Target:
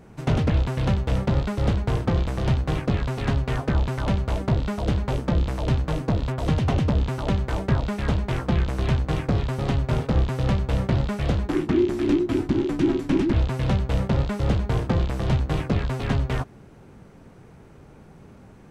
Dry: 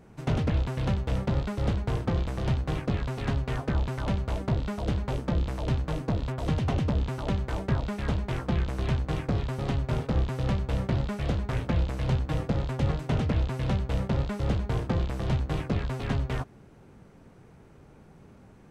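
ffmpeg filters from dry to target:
-filter_complex "[0:a]asplit=3[s0][s1][s2];[s0]afade=t=out:st=11.47:d=0.02[s3];[s1]afreqshift=-420,afade=t=in:st=11.47:d=0.02,afade=t=out:st=13.32:d=0.02[s4];[s2]afade=t=in:st=13.32:d=0.02[s5];[s3][s4][s5]amix=inputs=3:normalize=0,volume=1.78"

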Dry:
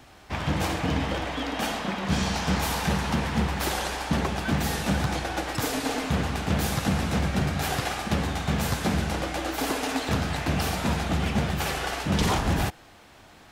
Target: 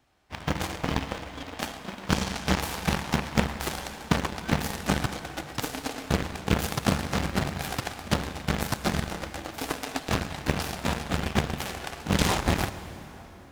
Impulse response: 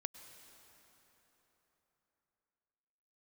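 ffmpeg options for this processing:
-filter_complex "[0:a]aeval=exprs='0.251*(cos(1*acos(clip(val(0)/0.251,-1,1)))-cos(1*PI/2))+0.0794*(cos(3*acos(clip(val(0)/0.251,-1,1)))-cos(3*PI/2))':c=same,asplit=2[s0][s1];[1:a]atrim=start_sample=2205[s2];[s1][s2]afir=irnorm=-1:irlink=0,volume=2.37[s3];[s0][s3]amix=inputs=2:normalize=0,acrusher=bits=7:mode=log:mix=0:aa=0.000001"

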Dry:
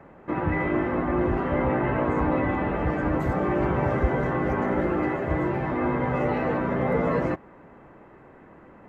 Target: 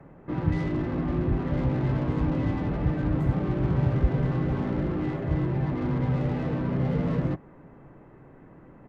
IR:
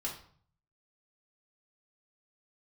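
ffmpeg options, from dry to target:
-filter_complex "[0:a]acrossover=split=250[s0][s1];[s0]aecho=1:1:7:0.42[s2];[s1]asoftclip=type=tanh:threshold=0.0355[s3];[s2][s3]amix=inputs=2:normalize=0,lowshelf=f=320:g=11.5,volume=0.473"

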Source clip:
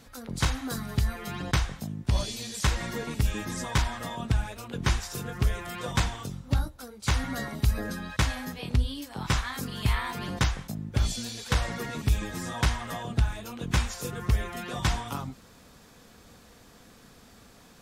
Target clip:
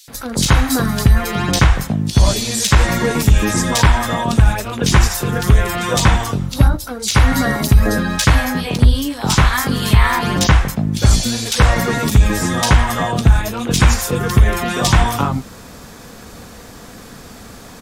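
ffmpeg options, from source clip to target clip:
-filter_complex "[0:a]asoftclip=type=hard:threshold=0.15,acrossover=split=3200[s0][s1];[s0]adelay=80[s2];[s2][s1]amix=inputs=2:normalize=0,alimiter=level_in=7.94:limit=0.891:release=50:level=0:latency=1,volume=0.891"

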